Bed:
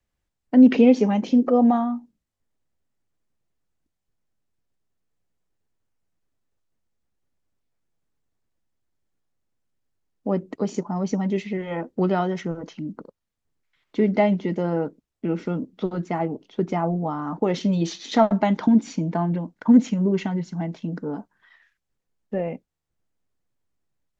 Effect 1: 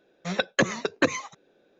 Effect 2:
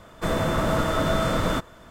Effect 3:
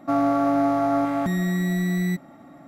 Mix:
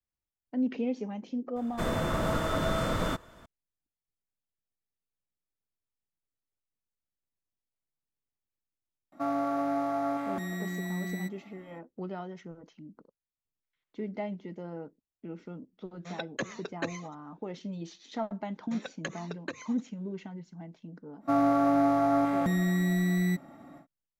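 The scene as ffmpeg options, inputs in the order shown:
-filter_complex "[3:a]asplit=2[a][b];[1:a]asplit=2[c][d];[0:a]volume=-16.5dB[e];[a]lowshelf=f=160:g=-12[f];[d]acompressor=threshold=-43dB:ratio=2:attack=98:release=184:knee=1:detection=peak[g];[2:a]atrim=end=1.9,asetpts=PTS-STARTPTS,volume=-6dB,afade=t=in:d=0.004:c=hsin,afade=t=out:st=1.896:d=0.004:c=hsin,adelay=1560[h];[f]atrim=end=2.67,asetpts=PTS-STARTPTS,volume=-7.5dB,afade=t=in:d=0.004:c=hsin,afade=t=out:st=2.666:d=0.004:c=hsin,adelay=9120[i];[c]atrim=end=1.79,asetpts=PTS-STARTPTS,volume=-12.5dB,afade=t=in:d=0.004:c=hsin,afade=t=out:st=1.786:d=0.004:c=hsin,adelay=15800[j];[g]atrim=end=1.79,asetpts=PTS-STARTPTS,volume=-9dB,afade=t=in:d=0.004:c=hsin,afade=t=out:st=1.786:d=0.004:c=hsin,adelay=18460[k];[b]atrim=end=2.67,asetpts=PTS-STARTPTS,volume=-3.5dB,afade=t=in:d=0.1,afade=t=out:st=2.57:d=0.1,adelay=21200[l];[e][h][i][j][k][l]amix=inputs=6:normalize=0"

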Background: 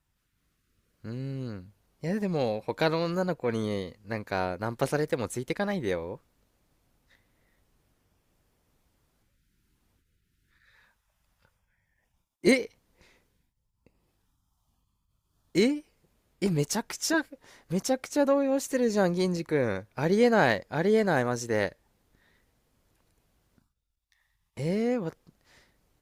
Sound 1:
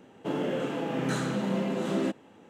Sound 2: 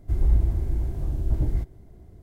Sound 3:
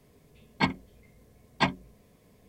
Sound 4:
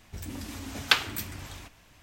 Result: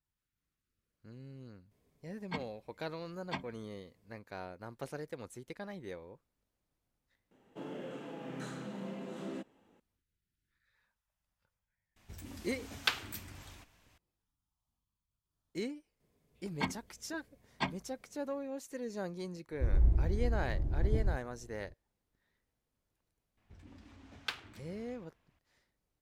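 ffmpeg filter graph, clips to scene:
-filter_complex "[3:a]asplit=2[a][b];[4:a]asplit=2[c][d];[0:a]volume=-15dB[e];[b]dynaudnorm=f=280:g=3:m=10dB[f];[2:a]lowpass=f=1.6k:p=1[g];[d]adynamicsmooth=sensitivity=5:basefreq=3.3k[h];[a]atrim=end=2.48,asetpts=PTS-STARTPTS,volume=-14.5dB,afade=t=in:d=0.004:c=hsin,afade=t=out:st=2.476:d=0.004:c=hsin,adelay=1710[i];[1:a]atrim=end=2.49,asetpts=PTS-STARTPTS,volume=-13.5dB,afade=t=in:d=0.004:c=hsin,afade=t=out:st=2.486:d=0.004:c=hsin,adelay=7310[j];[c]atrim=end=2.02,asetpts=PTS-STARTPTS,volume=-9.5dB,afade=t=in:d=0.004:c=hsin,afade=t=out:st=2.016:d=0.004:c=hsin,adelay=11960[k];[f]atrim=end=2.48,asetpts=PTS-STARTPTS,volume=-16.5dB,afade=t=in:d=0.004:c=hsin,afade=t=out:st=2.476:d=0.004:c=hsin,adelay=16000[l];[g]atrim=end=2.22,asetpts=PTS-STARTPTS,volume=-7dB,afade=t=in:d=0.004:c=hsin,afade=t=out:st=2.216:d=0.004:c=hsin,adelay=19520[m];[h]atrim=end=2.02,asetpts=PTS-STARTPTS,volume=-16.5dB,afade=t=in:d=0.004:c=hsin,afade=t=out:st=2.016:d=0.004:c=hsin,adelay=23370[n];[e][i][j][k][l][m][n]amix=inputs=7:normalize=0"

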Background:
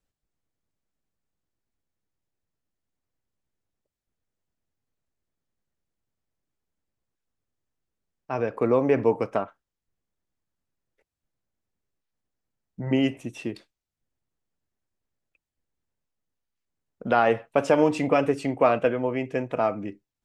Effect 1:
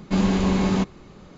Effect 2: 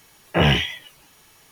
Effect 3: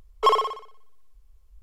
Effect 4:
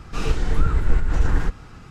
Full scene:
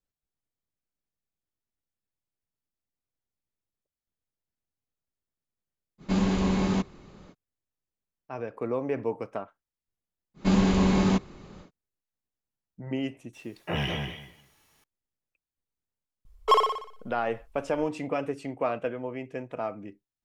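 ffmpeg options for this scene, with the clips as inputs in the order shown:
-filter_complex "[1:a]asplit=2[a][b];[0:a]volume=-8.5dB[c];[2:a]asplit=2[d][e];[e]adelay=202,lowpass=f=2.3k:p=1,volume=-3.5dB,asplit=2[f][g];[g]adelay=202,lowpass=f=2.3k:p=1,volume=0.18,asplit=2[h][i];[i]adelay=202,lowpass=f=2.3k:p=1,volume=0.18[j];[d][f][h][j]amix=inputs=4:normalize=0[k];[a]atrim=end=1.37,asetpts=PTS-STARTPTS,volume=-4.5dB,afade=t=in:d=0.05,afade=t=out:st=1.32:d=0.05,adelay=5980[l];[b]atrim=end=1.37,asetpts=PTS-STARTPTS,volume=-1.5dB,afade=t=in:d=0.1,afade=t=out:st=1.27:d=0.1,adelay=455994S[m];[k]atrim=end=1.51,asetpts=PTS-STARTPTS,volume=-12.5dB,afade=t=in:d=0.004:c=hsin,afade=t=out:st=1.506:d=0.004:c=hsin,adelay=13330[n];[3:a]atrim=end=1.62,asetpts=PTS-STARTPTS,volume=-1.5dB,afade=t=in:d=0.004:c=hsin,afade=t=out:st=1.616:d=0.004:c=hsin,adelay=16250[o];[c][l][m][n][o]amix=inputs=5:normalize=0"

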